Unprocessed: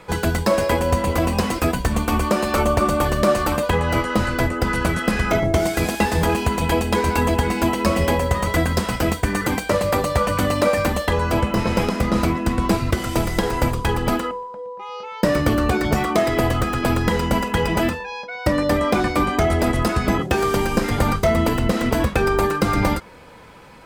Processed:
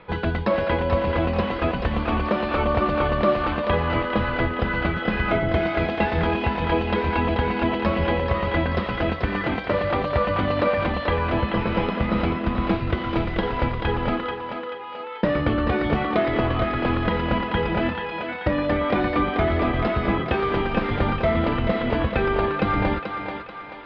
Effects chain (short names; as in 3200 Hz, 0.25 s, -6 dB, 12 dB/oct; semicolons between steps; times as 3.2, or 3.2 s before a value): steep low-pass 3700 Hz 36 dB/oct; thinning echo 0.435 s, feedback 48%, level -5 dB; gain -3.5 dB